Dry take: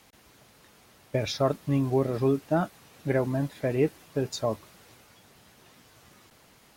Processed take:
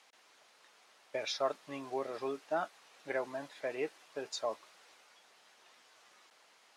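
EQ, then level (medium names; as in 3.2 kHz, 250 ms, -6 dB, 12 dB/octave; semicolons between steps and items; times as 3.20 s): band-pass 630–7500 Hz; -4.0 dB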